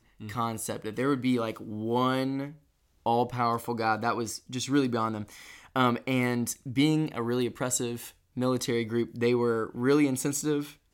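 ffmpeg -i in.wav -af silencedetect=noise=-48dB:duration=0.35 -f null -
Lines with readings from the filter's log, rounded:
silence_start: 2.56
silence_end: 3.06 | silence_duration: 0.50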